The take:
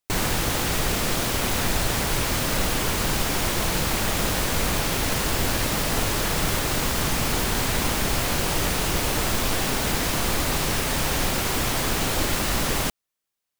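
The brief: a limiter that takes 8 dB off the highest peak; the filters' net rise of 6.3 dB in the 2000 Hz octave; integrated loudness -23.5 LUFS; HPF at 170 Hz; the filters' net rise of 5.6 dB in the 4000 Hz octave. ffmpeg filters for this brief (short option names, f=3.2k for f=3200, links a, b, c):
-af "highpass=170,equalizer=f=2k:t=o:g=6.5,equalizer=f=4k:t=o:g=5,volume=1dB,alimiter=limit=-16dB:level=0:latency=1"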